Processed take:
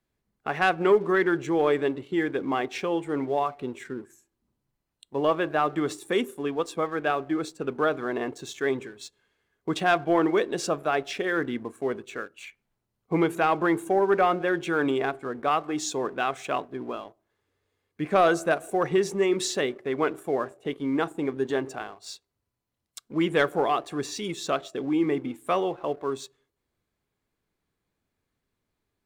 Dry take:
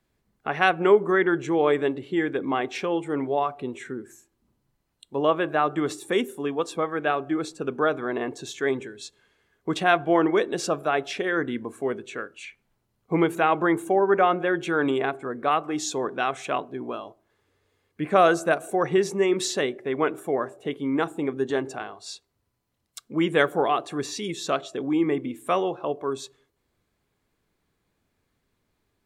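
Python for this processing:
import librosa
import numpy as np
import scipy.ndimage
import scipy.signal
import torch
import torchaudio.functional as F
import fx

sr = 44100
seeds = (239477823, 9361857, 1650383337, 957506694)

y = fx.leveller(x, sr, passes=1)
y = y * 10.0 ** (-5.0 / 20.0)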